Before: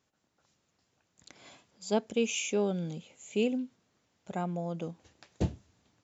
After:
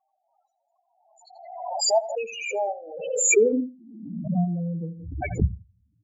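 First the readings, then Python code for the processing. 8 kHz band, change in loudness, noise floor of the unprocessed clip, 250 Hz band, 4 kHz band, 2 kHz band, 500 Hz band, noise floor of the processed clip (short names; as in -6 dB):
n/a, +8.0 dB, -78 dBFS, +4.5 dB, +8.0 dB, +10.5 dB, +8.5 dB, -76 dBFS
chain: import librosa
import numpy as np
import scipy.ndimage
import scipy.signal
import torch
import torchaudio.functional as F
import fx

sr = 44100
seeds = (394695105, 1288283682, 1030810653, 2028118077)

p1 = fx.level_steps(x, sr, step_db=16)
p2 = x + (p1 * 10.0 ** (-1.5 / 20.0))
p3 = fx.filter_sweep_highpass(p2, sr, from_hz=720.0, to_hz=61.0, start_s=2.74, end_s=5.23, q=3.4)
p4 = fx.doubler(p3, sr, ms=18.0, db=-11.0)
p5 = fx.spec_topn(p4, sr, count=4)
p6 = p5 + fx.echo_feedback(p5, sr, ms=83, feedback_pct=20, wet_db=-15.5, dry=0)
p7 = fx.pre_swell(p6, sr, db_per_s=51.0)
y = p7 * 10.0 ** (1.5 / 20.0)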